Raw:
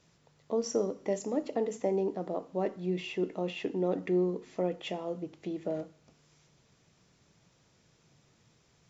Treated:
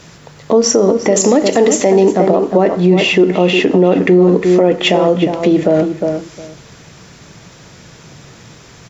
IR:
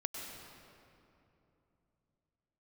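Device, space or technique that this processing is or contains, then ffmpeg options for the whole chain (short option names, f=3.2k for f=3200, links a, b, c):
mastering chain: -filter_complex "[0:a]asettb=1/sr,asplit=3[a][b][c];[a]atrim=end=1.164[d];[b]atrim=start=1.16:end=2.12,asetpts=PTS-STARTPTS,afade=t=in:d=0.004:c=qsin,afade=t=out:st=0.956:d=0.004:c=qsin,highshelf=f=2.4k:g=11[e];[c]atrim=start=2.116[f];[d][e]acrossfade=d=0.004:c1=hsin:c2=qsin[g];[g][f]acrossfade=d=0.004:c1=qsin:c2=hsin,equalizer=f=1.6k:t=o:w=0.77:g=3,asplit=2[h][i];[i]adelay=357,lowpass=f=2.2k:p=1,volume=-9dB,asplit=2[j][k];[k]adelay=357,lowpass=f=2.2k:p=1,volume=0.16[l];[h][j][l]amix=inputs=3:normalize=0,acompressor=threshold=-34dB:ratio=1.5,alimiter=level_in=27.5dB:limit=-1dB:release=50:level=0:latency=1,volume=-1dB"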